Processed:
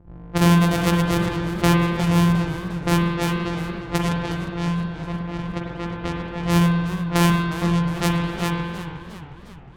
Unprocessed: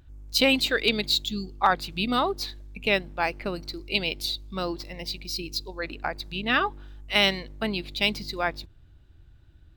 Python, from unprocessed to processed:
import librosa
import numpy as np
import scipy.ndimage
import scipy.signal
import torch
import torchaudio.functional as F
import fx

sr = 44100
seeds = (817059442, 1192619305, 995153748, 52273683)

y = np.r_[np.sort(x[:len(x) // 256 * 256].reshape(-1, 256), axis=1).ravel(), x[len(x) // 256 * 256:]]
y = fx.env_lowpass(y, sr, base_hz=970.0, full_db=-21.5)
y = fx.low_shelf(y, sr, hz=450.0, db=4.5)
y = fx.rev_spring(y, sr, rt60_s=1.8, pass_ms=(47,), chirp_ms=60, drr_db=-1.5)
y = fx.echo_warbled(y, sr, ms=357, feedback_pct=55, rate_hz=2.8, cents=146, wet_db=-13.5)